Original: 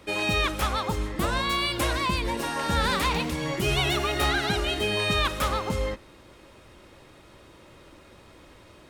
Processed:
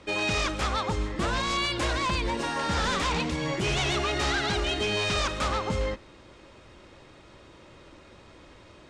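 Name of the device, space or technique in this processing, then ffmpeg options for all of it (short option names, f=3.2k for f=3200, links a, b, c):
synthesiser wavefolder: -af "aeval=exprs='0.0891*(abs(mod(val(0)/0.0891+3,4)-2)-1)':c=same,lowpass=f=7.8k:w=0.5412,lowpass=f=7.8k:w=1.3066"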